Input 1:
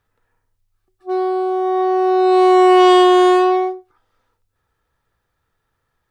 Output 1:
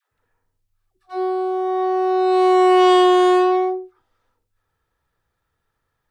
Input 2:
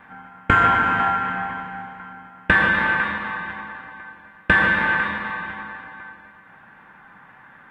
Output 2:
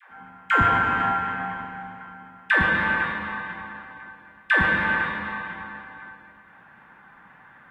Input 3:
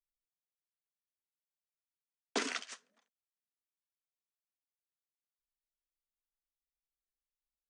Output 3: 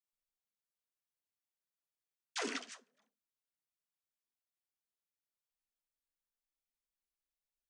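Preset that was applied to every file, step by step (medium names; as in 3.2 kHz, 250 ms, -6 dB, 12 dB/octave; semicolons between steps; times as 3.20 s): phase dispersion lows, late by 117 ms, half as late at 480 Hz; trim -3 dB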